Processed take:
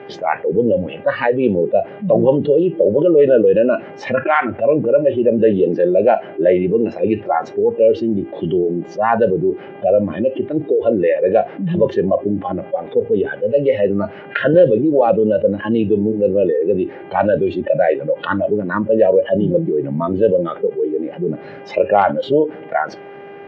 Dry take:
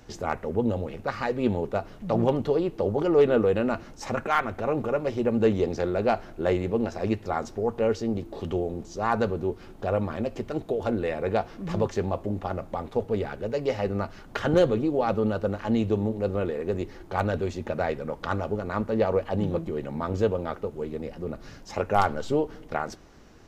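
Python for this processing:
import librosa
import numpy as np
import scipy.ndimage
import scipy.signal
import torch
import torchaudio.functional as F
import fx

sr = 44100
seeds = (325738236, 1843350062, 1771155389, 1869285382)

y = fx.dmg_buzz(x, sr, base_hz=400.0, harmonics=8, level_db=-50.0, tilt_db=-6, odd_only=False)
y = fx.cabinet(y, sr, low_hz=150.0, low_slope=24, high_hz=2500.0, hz=(230.0, 570.0, 1200.0), db=(-7, 8, -8))
y = fx.noise_reduce_blind(y, sr, reduce_db=20)
y = fx.env_flatten(y, sr, amount_pct=50)
y = y * librosa.db_to_amplitude(4.5)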